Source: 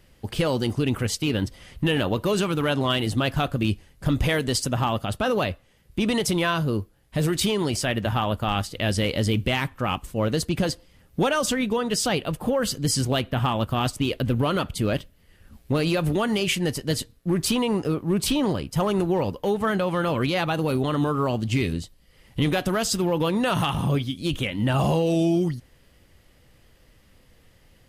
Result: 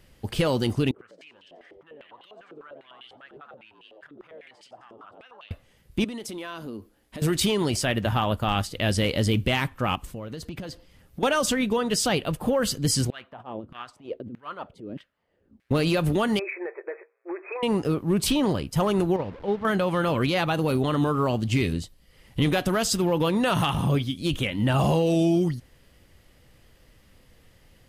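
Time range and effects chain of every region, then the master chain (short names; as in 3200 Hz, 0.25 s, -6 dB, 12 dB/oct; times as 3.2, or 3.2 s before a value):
0.91–5.51 frequency-shifting echo 88 ms, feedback 53%, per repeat +74 Hz, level -8 dB + compressor 16:1, threshold -32 dBFS + stepped band-pass 10 Hz 410–3000 Hz
6.04–7.22 resonant low shelf 190 Hz -6.5 dB, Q 3 + compressor 5:1, threshold -34 dBFS
9.95–11.23 dynamic EQ 9300 Hz, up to -7 dB, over -47 dBFS, Q 0.85 + compressor 16:1, threshold -31 dBFS
13.1–15.71 bell 900 Hz -4.5 dB 2.7 oct + negative-ratio compressor -27 dBFS, ratio -0.5 + LFO band-pass saw down 1.6 Hz 240–2000 Hz
16.39–17.63 brick-wall FIR band-pass 340–2600 Hz + compressor, threshold -28 dBFS
19.16–19.65 delta modulation 64 kbps, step -30 dBFS + gate -23 dBFS, range -7 dB + air absorption 340 m
whole clip: dry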